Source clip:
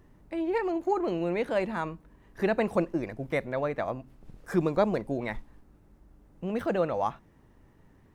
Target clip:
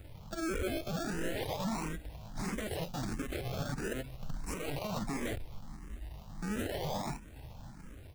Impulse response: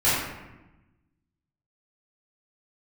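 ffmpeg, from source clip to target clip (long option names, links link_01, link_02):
-filter_complex "[0:a]aecho=1:1:1.3:0.59,acrossover=split=3000[link_01][link_02];[link_01]acrusher=samples=36:mix=1:aa=0.000001:lfo=1:lforange=21.6:lforate=0.37[link_03];[link_03][link_02]amix=inputs=2:normalize=0,asettb=1/sr,asplit=3[link_04][link_05][link_06];[link_04]atrim=end=2.414[link_07];[link_05]atrim=start=2.41:end=3.2,asetpts=PTS-STARTPTS,afade=type=in:duration=0.004:curve=qsin,afade=type=out:start_time=0.786:duration=0.004:curve=qsin,equalizer=frequency=830:width=0.35:gain=-5.5[link_08];[link_06]atrim=start=3.196[link_09];[link_07][link_08]acrossfade=duration=0.004:curve1=hsin:curve2=qsin[link_10];[link_10][link_09]acrossfade=duration=0.004:curve1=qsin:curve2=hsin,asplit=2[link_11][link_12];[link_12]acompressor=threshold=-39dB:ratio=6,volume=0.5dB[link_13];[link_11][link_13]amix=inputs=2:normalize=0,asoftclip=type=tanh:threshold=-28.5dB,dynaudnorm=framelen=350:gausssize=5:maxgain=3dB,aeval=exprs='0.0282*(abs(mod(val(0)/0.0282+3,4)-2)-1)':channel_layout=same,asplit=2[link_14][link_15];[link_15]afreqshift=1.5[link_16];[link_14][link_16]amix=inputs=2:normalize=1,volume=3dB"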